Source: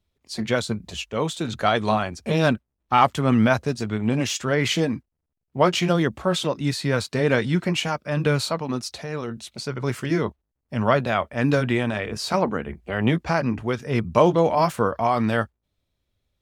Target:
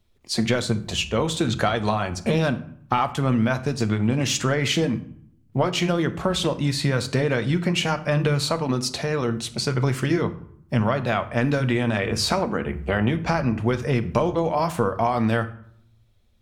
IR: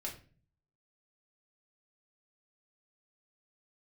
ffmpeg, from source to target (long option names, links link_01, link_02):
-filter_complex "[0:a]acompressor=threshold=-26dB:ratio=10,asplit=2[link_01][link_02];[1:a]atrim=start_sample=2205,asetrate=24696,aresample=44100,lowshelf=frequency=110:gain=9.5[link_03];[link_02][link_03]afir=irnorm=-1:irlink=0,volume=-11dB[link_04];[link_01][link_04]amix=inputs=2:normalize=0,volume=5.5dB"